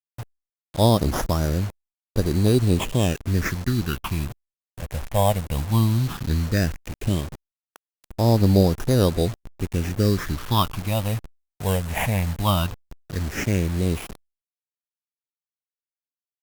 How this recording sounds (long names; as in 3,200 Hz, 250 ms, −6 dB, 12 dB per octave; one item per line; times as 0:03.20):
aliases and images of a low sample rate 4,300 Hz, jitter 0%
phaser sweep stages 6, 0.15 Hz, lowest notch 330–2,700 Hz
a quantiser's noise floor 6 bits, dither none
Opus